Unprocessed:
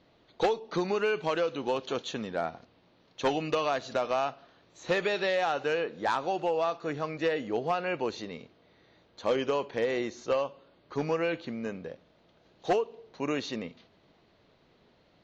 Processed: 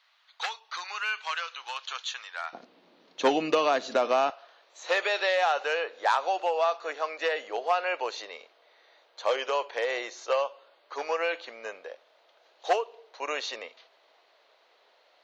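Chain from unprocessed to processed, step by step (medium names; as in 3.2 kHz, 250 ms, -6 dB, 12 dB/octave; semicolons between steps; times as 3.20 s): high-pass 1.1 kHz 24 dB/octave, from 2.53 s 220 Hz, from 4.30 s 550 Hz; trim +4.5 dB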